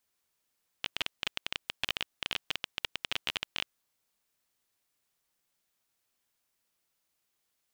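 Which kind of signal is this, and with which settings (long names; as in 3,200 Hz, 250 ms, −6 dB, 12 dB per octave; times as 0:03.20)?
Geiger counter clicks 18 per second −13 dBFS 2.96 s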